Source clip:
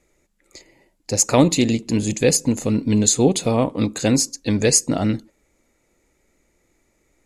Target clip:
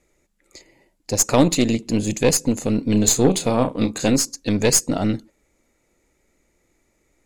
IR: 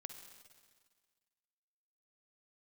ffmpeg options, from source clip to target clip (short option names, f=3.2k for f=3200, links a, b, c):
-filter_complex "[0:a]asettb=1/sr,asplit=3[a][b][c];[a]atrim=end=2.904[d];[b]atrim=start=2.9:end=4.1,asetpts=PTS-STARTPTS,afade=t=in:d=0.004:c=qsin,afade=t=out:st=1.196:d=0.004:c=qsin,asplit=2[e][f];[f]adelay=32,volume=-8.5dB[g];[e][g]amix=inputs=2:normalize=0,atrim=end_sample=52920[h];[c]atrim=start=4.096[i];[d][h]acrossfade=d=0.004:c1=hsin:c2=qsin[j];[j][i]acrossfade=d=0.004:c1=qsin:c2=hsin,aeval=exprs='0.891*(cos(1*acos(clip(val(0)/0.891,-1,1)))-cos(1*PI/2))+0.0708*(cos(6*acos(clip(val(0)/0.891,-1,1)))-cos(6*PI/2))':c=same,volume=-1dB"